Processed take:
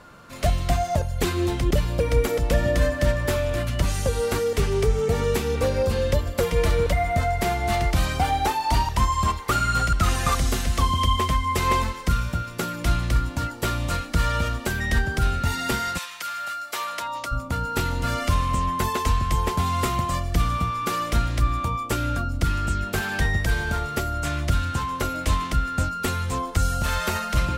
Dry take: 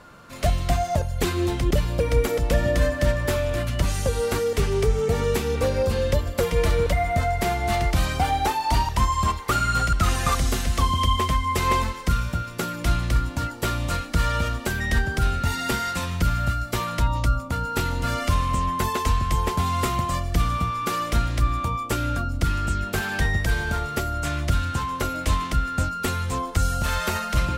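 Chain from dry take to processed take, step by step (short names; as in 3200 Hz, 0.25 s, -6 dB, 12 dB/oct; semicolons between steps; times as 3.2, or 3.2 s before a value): 15.97–17.31 HPF 1400 Hz -> 470 Hz 12 dB/oct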